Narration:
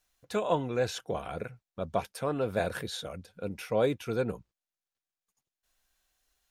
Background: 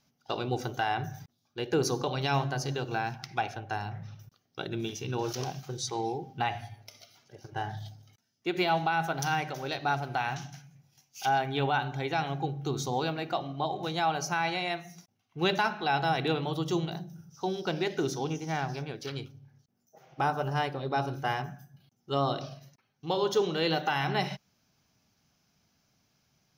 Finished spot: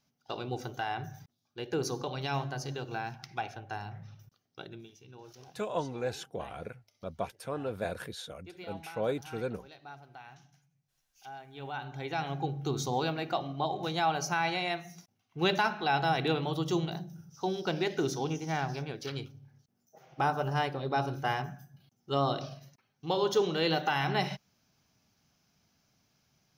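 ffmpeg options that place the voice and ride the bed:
-filter_complex "[0:a]adelay=5250,volume=0.562[s0];[1:a]volume=4.73,afade=t=out:st=4.45:d=0.43:silence=0.199526,afade=t=in:st=11.52:d=1.02:silence=0.11885[s1];[s0][s1]amix=inputs=2:normalize=0"

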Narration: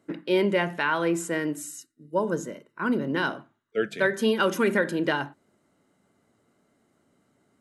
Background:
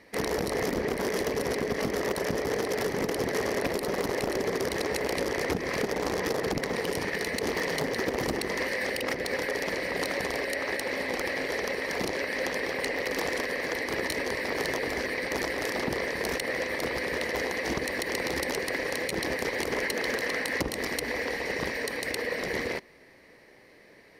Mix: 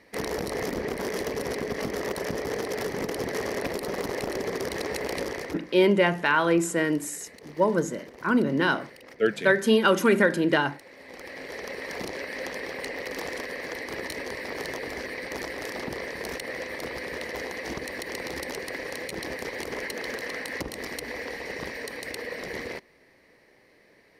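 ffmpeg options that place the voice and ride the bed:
-filter_complex "[0:a]adelay=5450,volume=1.41[s0];[1:a]volume=4.22,afade=t=out:st=5.23:d=0.43:silence=0.149624,afade=t=in:st=10.97:d=0.88:silence=0.199526[s1];[s0][s1]amix=inputs=2:normalize=0"

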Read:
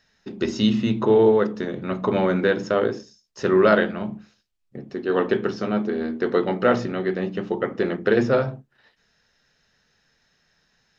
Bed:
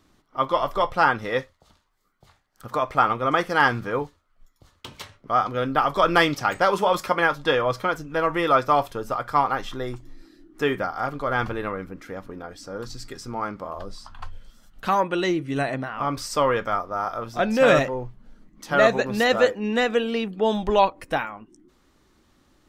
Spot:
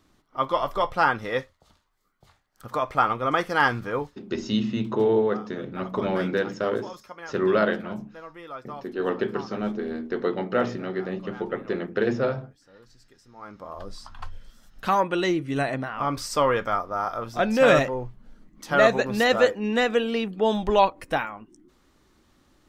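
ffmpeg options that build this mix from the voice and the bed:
-filter_complex "[0:a]adelay=3900,volume=0.562[s0];[1:a]volume=7.08,afade=t=out:st=4.27:d=0.44:silence=0.133352,afade=t=in:st=13.35:d=0.63:silence=0.112202[s1];[s0][s1]amix=inputs=2:normalize=0"

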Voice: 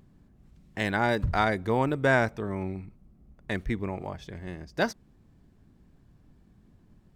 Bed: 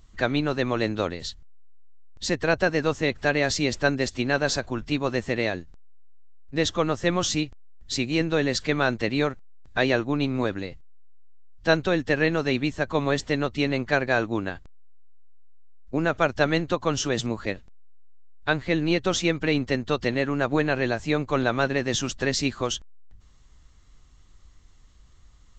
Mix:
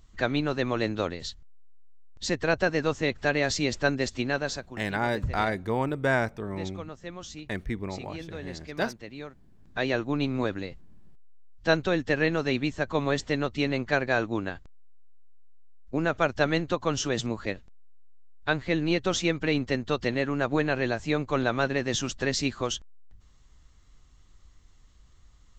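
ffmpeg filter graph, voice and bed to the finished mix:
-filter_complex "[0:a]adelay=4000,volume=0.794[s0];[1:a]volume=3.76,afade=t=out:st=4.18:d=0.62:silence=0.199526,afade=t=in:st=9.31:d=0.85:silence=0.199526[s1];[s0][s1]amix=inputs=2:normalize=0"

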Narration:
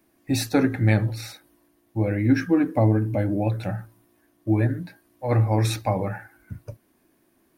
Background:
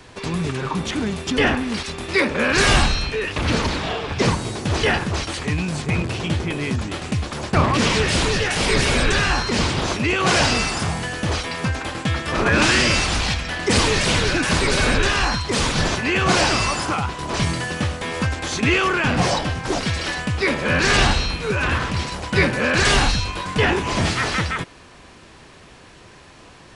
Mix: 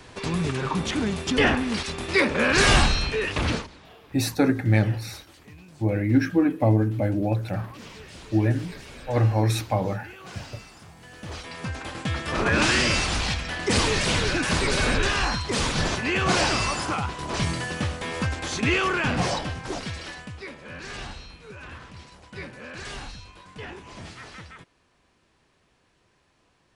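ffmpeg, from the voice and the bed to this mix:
-filter_complex "[0:a]adelay=3850,volume=0.944[s0];[1:a]volume=7.94,afade=t=out:st=3.43:d=0.24:silence=0.0749894,afade=t=in:st=10.96:d=1.35:silence=0.1,afade=t=out:st=19:d=1.53:silence=0.158489[s1];[s0][s1]amix=inputs=2:normalize=0"

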